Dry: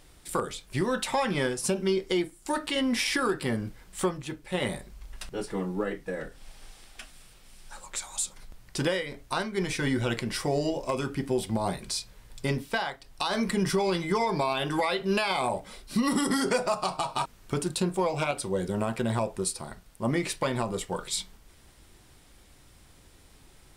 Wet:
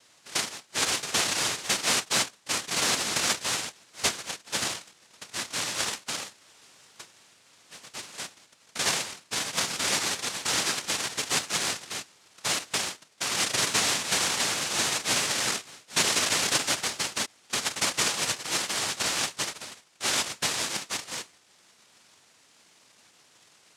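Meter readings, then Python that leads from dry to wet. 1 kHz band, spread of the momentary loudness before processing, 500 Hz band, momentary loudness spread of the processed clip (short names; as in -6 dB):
-2.5 dB, 11 LU, -9.0 dB, 12 LU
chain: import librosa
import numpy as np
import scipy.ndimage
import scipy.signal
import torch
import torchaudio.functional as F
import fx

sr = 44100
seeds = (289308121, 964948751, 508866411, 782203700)

y = fx.tracing_dist(x, sr, depth_ms=0.15)
y = fx.noise_vocoder(y, sr, seeds[0], bands=1)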